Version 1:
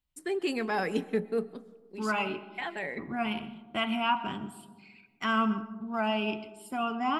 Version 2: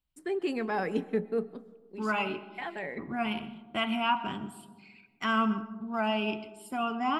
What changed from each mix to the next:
first voice: add high shelf 2800 Hz -9.5 dB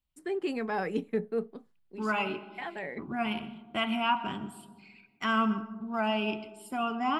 first voice: send off

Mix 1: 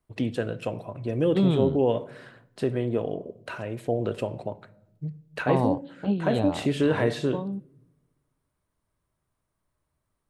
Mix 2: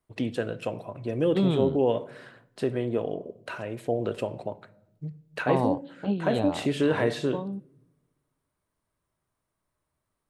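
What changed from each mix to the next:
master: add low shelf 140 Hz -6.5 dB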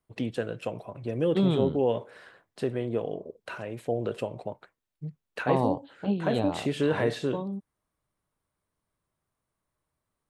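reverb: off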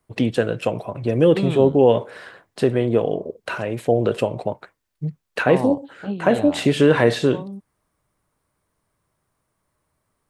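first voice +11.0 dB

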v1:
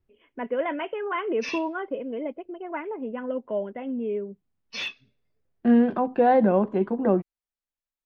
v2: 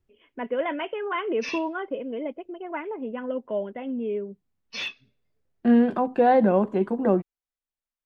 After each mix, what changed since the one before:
first voice: remove LPF 2900 Hz; second voice: remove air absorption 140 m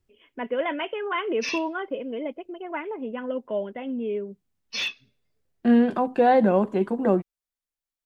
master: add high shelf 3600 Hz +9 dB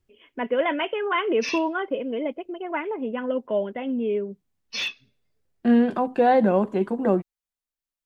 first voice +3.5 dB

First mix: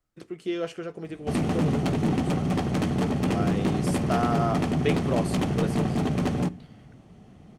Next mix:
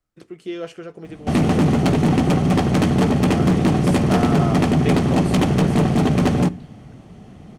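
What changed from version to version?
background +8.5 dB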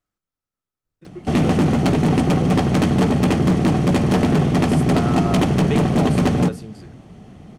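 first voice: entry +0.85 s

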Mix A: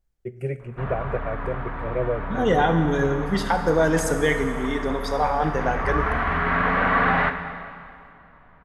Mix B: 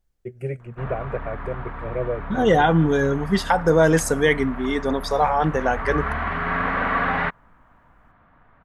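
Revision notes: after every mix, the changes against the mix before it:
second voice +5.5 dB; reverb: off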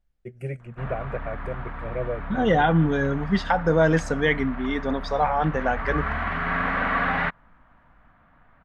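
second voice: add air absorption 160 m; master: add fifteen-band EQ 100 Hz -4 dB, 400 Hz -6 dB, 1000 Hz -3 dB

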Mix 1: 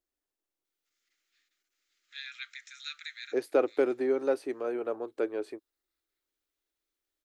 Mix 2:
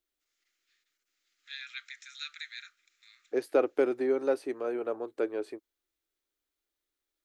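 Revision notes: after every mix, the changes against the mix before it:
first voice: entry -0.65 s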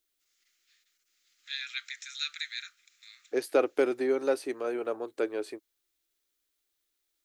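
master: add high shelf 2300 Hz +9.5 dB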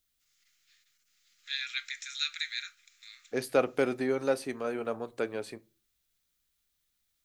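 second voice: add resonant low shelf 240 Hz +10 dB, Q 3; reverb: on, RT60 0.30 s

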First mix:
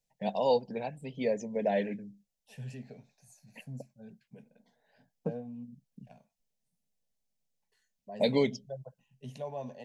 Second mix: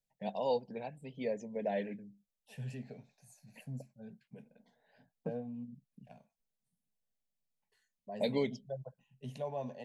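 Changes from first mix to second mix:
first voice -6.0 dB; master: add bell 5900 Hz -4 dB 0.71 oct

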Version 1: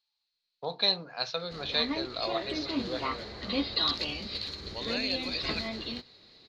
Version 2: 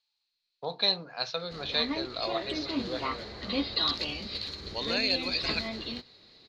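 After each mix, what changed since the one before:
second voice +4.5 dB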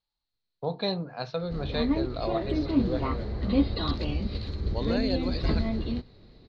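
second voice: add bell 2500 Hz -11.5 dB 0.29 oct; master: add tilt -4.5 dB/oct

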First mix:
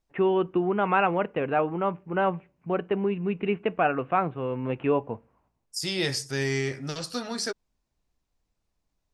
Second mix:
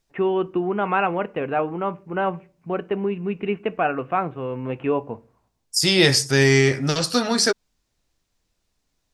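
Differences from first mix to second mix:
first voice: send +8.5 dB; second voice +11.5 dB

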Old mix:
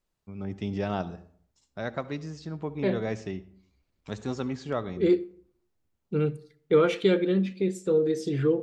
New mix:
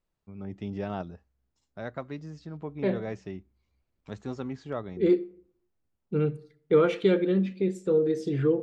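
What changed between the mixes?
first voice: send off; master: add high shelf 3400 Hz -8.5 dB

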